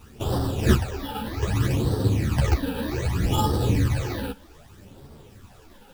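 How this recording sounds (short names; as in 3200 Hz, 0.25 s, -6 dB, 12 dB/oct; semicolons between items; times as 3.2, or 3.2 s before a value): aliases and images of a low sample rate 2100 Hz, jitter 0%; phasing stages 12, 0.64 Hz, lowest notch 110–2400 Hz; a quantiser's noise floor 10-bit, dither none; a shimmering, thickened sound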